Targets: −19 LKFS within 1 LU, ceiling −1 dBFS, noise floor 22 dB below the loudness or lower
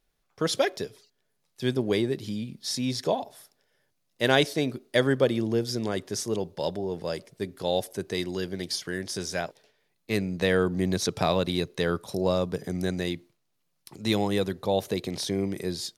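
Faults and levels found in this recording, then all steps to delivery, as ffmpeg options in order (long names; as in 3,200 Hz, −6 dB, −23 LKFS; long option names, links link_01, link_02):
integrated loudness −28.0 LKFS; sample peak −6.0 dBFS; target loudness −19.0 LKFS
→ -af "volume=9dB,alimiter=limit=-1dB:level=0:latency=1"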